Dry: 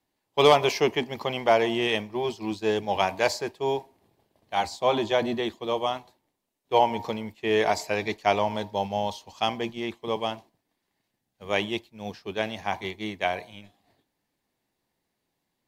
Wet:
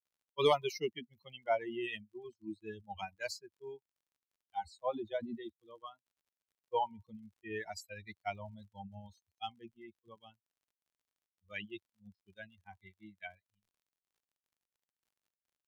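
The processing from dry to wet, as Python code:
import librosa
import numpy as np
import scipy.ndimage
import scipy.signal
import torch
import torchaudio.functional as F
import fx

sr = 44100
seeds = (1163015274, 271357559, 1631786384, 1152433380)

y = fx.bin_expand(x, sr, power=3.0)
y = fx.dmg_crackle(y, sr, seeds[0], per_s=52.0, level_db=-59.0)
y = F.gain(torch.from_numpy(y), -7.0).numpy()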